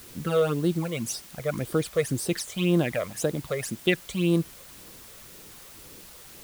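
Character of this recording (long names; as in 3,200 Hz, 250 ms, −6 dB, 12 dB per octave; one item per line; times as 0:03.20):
phaser sweep stages 12, 1.9 Hz, lowest notch 260–2,400 Hz
a quantiser's noise floor 8 bits, dither triangular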